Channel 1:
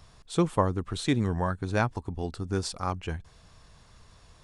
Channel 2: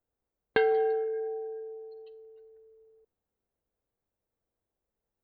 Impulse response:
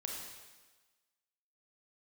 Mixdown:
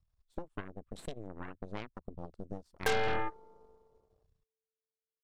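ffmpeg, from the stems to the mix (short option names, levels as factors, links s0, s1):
-filter_complex "[0:a]acompressor=threshold=0.0251:ratio=10,volume=0.562,asplit=2[s0][s1];[1:a]highpass=470,asoftclip=type=tanh:threshold=0.0944,adelay=2300,volume=1[s2];[s1]apad=whole_len=332124[s3];[s2][s3]sidechaingate=range=0.251:threshold=0.00224:ratio=16:detection=peak[s4];[s0][s4]amix=inputs=2:normalize=0,afwtdn=0.00501,aeval=exprs='0.106*(cos(1*acos(clip(val(0)/0.106,-1,1)))-cos(1*PI/2))+0.0211*(cos(3*acos(clip(val(0)/0.106,-1,1)))-cos(3*PI/2))+0.00944*(cos(7*acos(clip(val(0)/0.106,-1,1)))-cos(7*PI/2))+0.0211*(cos(8*acos(clip(val(0)/0.106,-1,1)))-cos(8*PI/2))':c=same"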